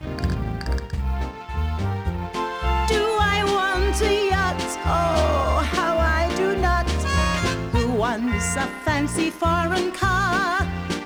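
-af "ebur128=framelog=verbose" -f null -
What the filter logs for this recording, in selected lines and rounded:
Integrated loudness:
  I:         -22.2 LUFS
  Threshold: -32.2 LUFS
Loudness range:
  LRA:         2.6 LU
  Threshold: -41.8 LUFS
  LRA low:   -23.4 LUFS
  LRA high:  -20.8 LUFS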